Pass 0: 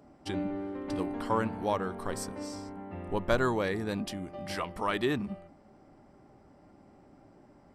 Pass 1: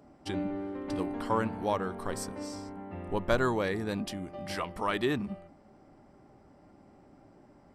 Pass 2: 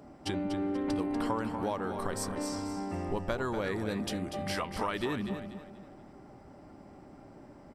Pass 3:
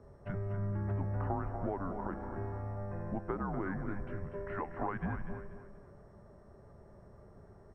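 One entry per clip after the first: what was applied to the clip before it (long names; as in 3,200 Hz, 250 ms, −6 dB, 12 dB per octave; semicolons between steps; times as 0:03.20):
no processing that can be heard
downward compressor 6 to 1, threshold −35 dBFS, peak gain reduction 14 dB; repeating echo 242 ms, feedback 34%, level −8.5 dB; level +5 dB
on a send at −17 dB: convolution reverb RT60 0.90 s, pre-delay 134 ms; on the sum: single-sideband voice off tune −190 Hz 160–2,000 Hz; level −3 dB; MP2 128 kbit/s 22,050 Hz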